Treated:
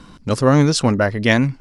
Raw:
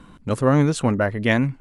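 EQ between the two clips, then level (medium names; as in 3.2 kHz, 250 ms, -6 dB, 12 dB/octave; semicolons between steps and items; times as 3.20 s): peaking EQ 5.1 kHz +14 dB 0.62 oct; +3.5 dB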